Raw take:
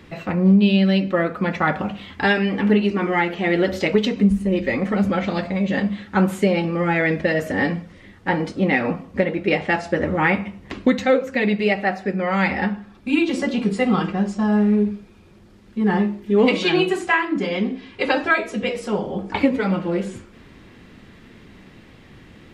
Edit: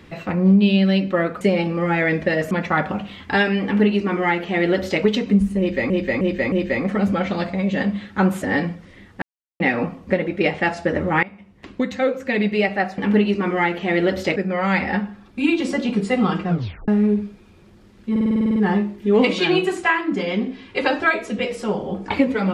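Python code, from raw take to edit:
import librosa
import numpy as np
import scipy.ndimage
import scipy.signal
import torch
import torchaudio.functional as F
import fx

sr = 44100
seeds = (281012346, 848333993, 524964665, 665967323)

y = fx.edit(x, sr, fx.duplicate(start_s=2.54, length_s=1.38, to_s=12.05),
    fx.repeat(start_s=4.49, length_s=0.31, count=4),
    fx.move(start_s=6.39, length_s=1.1, to_s=1.41),
    fx.silence(start_s=8.29, length_s=0.38),
    fx.fade_in_from(start_s=10.3, length_s=1.22, floor_db=-21.5),
    fx.tape_stop(start_s=14.16, length_s=0.41),
    fx.stutter(start_s=15.8, slice_s=0.05, count=10), tone=tone)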